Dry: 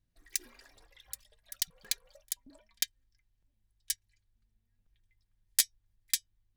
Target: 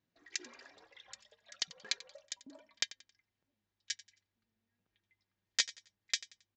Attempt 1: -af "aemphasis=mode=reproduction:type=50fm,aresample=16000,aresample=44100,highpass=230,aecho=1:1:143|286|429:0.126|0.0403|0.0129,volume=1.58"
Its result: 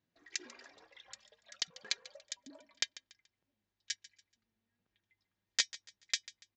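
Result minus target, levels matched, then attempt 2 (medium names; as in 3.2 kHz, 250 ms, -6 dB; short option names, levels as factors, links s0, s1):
echo 53 ms late
-af "aemphasis=mode=reproduction:type=50fm,aresample=16000,aresample=44100,highpass=230,aecho=1:1:90|180|270:0.126|0.0403|0.0129,volume=1.58"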